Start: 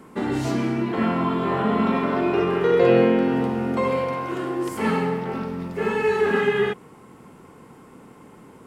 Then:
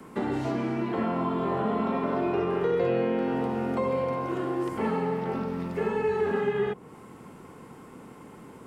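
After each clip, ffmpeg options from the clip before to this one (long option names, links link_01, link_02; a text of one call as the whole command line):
ffmpeg -i in.wav -filter_complex "[0:a]acrossover=split=190|480|960|3600[link_01][link_02][link_03][link_04][link_05];[link_01]acompressor=threshold=-37dB:ratio=4[link_06];[link_02]acompressor=threshold=-32dB:ratio=4[link_07];[link_03]acompressor=threshold=-29dB:ratio=4[link_08];[link_04]acompressor=threshold=-43dB:ratio=4[link_09];[link_05]acompressor=threshold=-60dB:ratio=4[link_10];[link_06][link_07][link_08][link_09][link_10]amix=inputs=5:normalize=0" out.wav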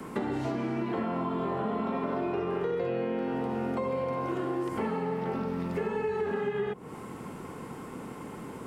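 ffmpeg -i in.wav -af "acompressor=threshold=-35dB:ratio=4,volume=5.5dB" out.wav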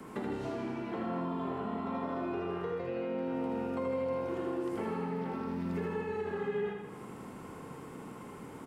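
ffmpeg -i in.wav -af "aecho=1:1:80|160|240|320|400|480|560|640:0.596|0.345|0.2|0.116|0.0674|0.0391|0.0227|0.0132,volume=-6.5dB" out.wav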